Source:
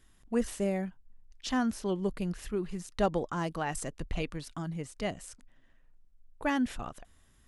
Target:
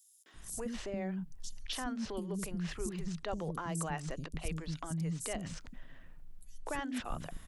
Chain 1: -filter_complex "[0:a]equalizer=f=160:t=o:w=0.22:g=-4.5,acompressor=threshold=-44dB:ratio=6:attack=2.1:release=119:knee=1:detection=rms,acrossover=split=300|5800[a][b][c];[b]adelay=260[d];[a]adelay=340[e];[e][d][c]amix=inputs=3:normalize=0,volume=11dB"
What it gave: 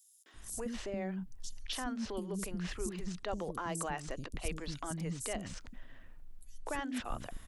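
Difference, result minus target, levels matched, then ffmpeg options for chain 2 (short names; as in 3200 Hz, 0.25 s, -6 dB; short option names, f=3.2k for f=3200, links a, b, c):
125 Hz band -3.0 dB
-filter_complex "[0:a]equalizer=f=160:t=o:w=0.22:g=7,acompressor=threshold=-44dB:ratio=6:attack=2.1:release=119:knee=1:detection=rms,acrossover=split=300|5800[a][b][c];[b]adelay=260[d];[a]adelay=340[e];[e][d][c]amix=inputs=3:normalize=0,volume=11dB"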